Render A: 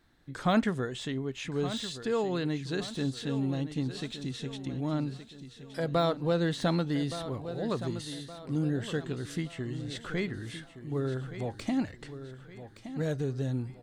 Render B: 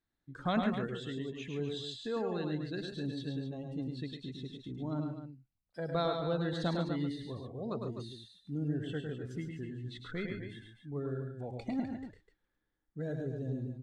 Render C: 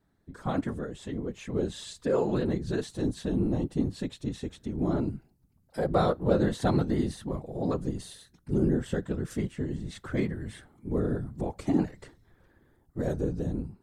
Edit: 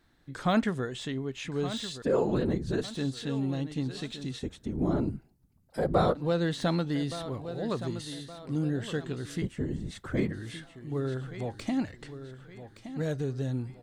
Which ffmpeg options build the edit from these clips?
-filter_complex "[2:a]asplit=3[s0][s1][s2];[0:a]asplit=4[s3][s4][s5][s6];[s3]atrim=end=2.022[s7];[s0]atrim=start=2.018:end=2.842[s8];[s4]atrim=start=2.838:end=4.392[s9];[s1]atrim=start=4.388:end=6.152[s10];[s5]atrim=start=6.148:end=9.422[s11];[s2]atrim=start=9.418:end=10.322[s12];[s6]atrim=start=10.318[s13];[s7][s8]acrossfade=d=0.004:c1=hsin:c2=hsin[s14];[s14][s9]acrossfade=d=0.004:c1=hsin:c2=hsin[s15];[s15][s10]acrossfade=d=0.004:c1=hsin:c2=hsin[s16];[s16][s11]acrossfade=d=0.004:c1=hsin:c2=hsin[s17];[s17][s12]acrossfade=d=0.004:c1=hsin:c2=hsin[s18];[s18][s13]acrossfade=d=0.004:c1=hsin:c2=hsin"

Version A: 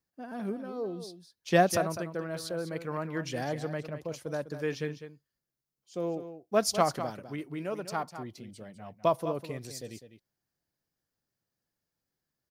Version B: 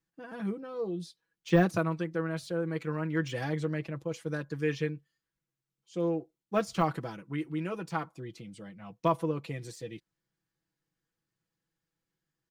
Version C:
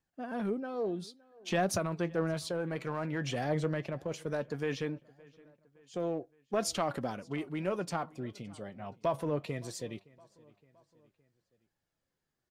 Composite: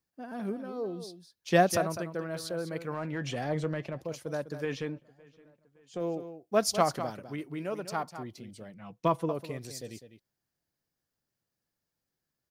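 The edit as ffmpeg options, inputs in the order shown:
-filter_complex "[2:a]asplit=2[s0][s1];[0:a]asplit=4[s2][s3][s4][s5];[s2]atrim=end=2.942[s6];[s0]atrim=start=2.938:end=4.012[s7];[s3]atrim=start=4.008:end=4.652[s8];[s1]atrim=start=4.648:end=6.012[s9];[s4]atrim=start=6.008:end=8.742[s10];[1:a]atrim=start=8.738:end=9.292[s11];[s5]atrim=start=9.288[s12];[s6][s7]acrossfade=d=0.004:c1=hsin:c2=hsin[s13];[s13][s8]acrossfade=d=0.004:c1=hsin:c2=hsin[s14];[s14][s9]acrossfade=d=0.004:c1=hsin:c2=hsin[s15];[s15][s10]acrossfade=d=0.004:c1=hsin:c2=hsin[s16];[s16][s11]acrossfade=d=0.004:c1=hsin:c2=hsin[s17];[s17][s12]acrossfade=d=0.004:c1=hsin:c2=hsin"

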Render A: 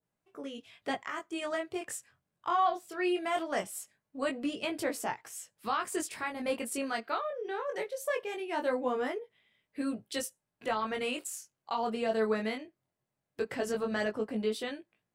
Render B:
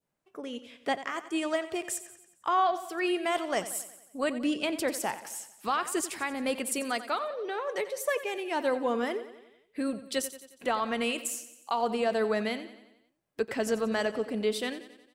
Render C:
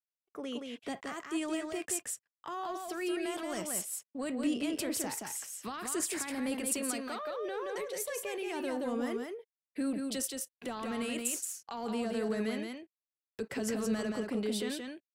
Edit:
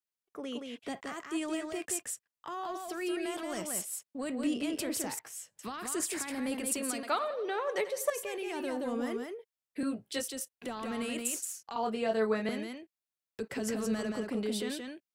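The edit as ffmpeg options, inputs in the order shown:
-filter_complex "[0:a]asplit=3[s0][s1][s2];[2:a]asplit=5[s3][s4][s5][s6][s7];[s3]atrim=end=5.192[s8];[s0]atrim=start=5.188:end=5.592[s9];[s4]atrim=start=5.588:end=7.032[s10];[1:a]atrim=start=7.028:end=8.102[s11];[s5]atrim=start=8.098:end=9.832[s12];[s1]atrim=start=9.828:end=10.282[s13];[s6]atrim=start=10.278:end=11.762[s14];[s2]atrim=start=11.758:end=12.492[s15];[s7]atrim=start=12.488[s16];[s8][s9]acrossfade=d=0.004:c1=hsin:c2=hsin[s17];[s17][s10]acrossfade=d=0.004:c1=hsin:c2=hsin[s18];[s18][s11]acrossfade=d=0.004:c1=hsin:c2=hsin[s19];[s19][s12]acrossfade=d=0.004:c1=hsin:c2=hsin[s20];[s20][s13]acrossfade=d=0.004:c1=hsin:c2=hsin[s21];[s21][s14]acrossfade=d=0.004:c1=hsin:c2=hsin[s22];[s22][s15]acrossfade=d=0.004:c1=hsin:c2=hsin[s23];[s23][s16]acrossfade=d=0.004:c1=hsin:c2=hsin"

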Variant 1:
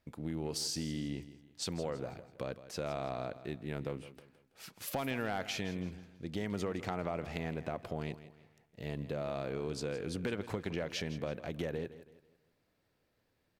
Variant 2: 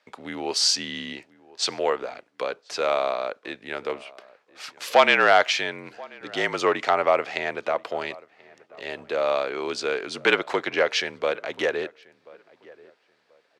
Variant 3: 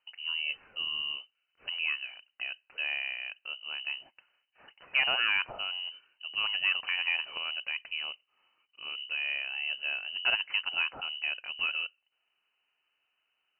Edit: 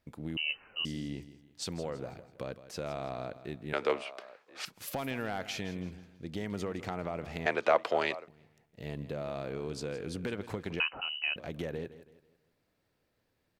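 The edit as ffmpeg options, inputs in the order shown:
-filter_complex "[2:a]asplit=2[s0][s1];[1:a]asplit=2[s2][s3];[0:a]asplit=5[s4][s5][s6][s7][s8];[s4]atrim=end=0.372[s9];[s0]atrim=start=0.368:end=0.852[s10];[s5]atrim=start=0.848:end=3.732[s11];[s2]atrim=start=3.728:end=4.652[s12];[s6]atrim=start=4.648:end=7.462[s13];[s3]atrim=start=7.458:end=8.282[s14];[s7]atrim=start=8.278:end=10.802[s15];[s1]atrim=start=10.798:end=11.362[s16];[s8]atrim=start=11.358[s17];[s9][s10]acrossfade=d=0.004:c1=hsin:c2=hsin[s18];[s18][s11]acrossfade=d=0.004:c1=hsin:c2=hsin[s19];[s19][s12]acrossfade=d=0.004:c1=hsin:c2=hsin[s20];[s20][s13]acrossfade=d=0.004:c1=hsin:c2=hsin[s21];[s21][s14]acrossfade=d=0.004:c1=hsin:c2=hsin[s22];[s22][s15]acrossfade=d=0.004:c1=hsin:c2=hsin[s23];[s23][s16]acrossfade=d=0.004:c1=hsin:c2=hsin[s24];[s24][s17]acrossfade=d=0.004:c1=hsin:c2=hsin"

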